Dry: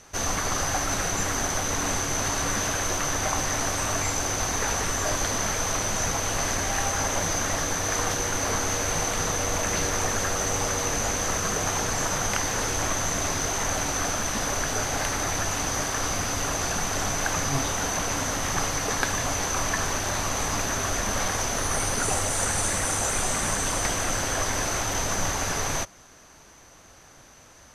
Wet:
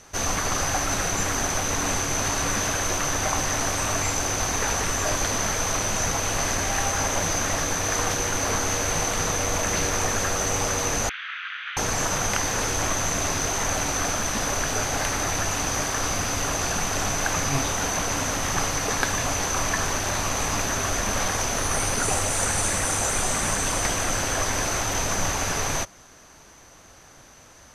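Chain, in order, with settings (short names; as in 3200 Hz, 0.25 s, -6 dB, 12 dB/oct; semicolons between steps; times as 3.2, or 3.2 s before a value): rattling part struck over -33 dBFS, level -28 dBFS; 11.09–11.77 elliptic band-pass 1400–3400 Hz, stop band 50 dB; gain +1.5 dB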